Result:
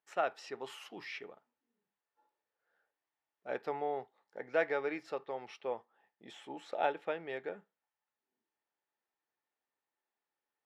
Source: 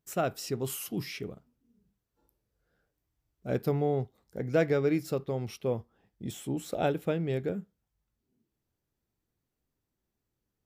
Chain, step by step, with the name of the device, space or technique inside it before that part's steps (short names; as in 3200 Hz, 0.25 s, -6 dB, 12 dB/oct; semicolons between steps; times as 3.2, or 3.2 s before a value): tin-can telephone (BPF 690–2800 Hz; small resonant body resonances 860/1800 Hz, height 9 dB)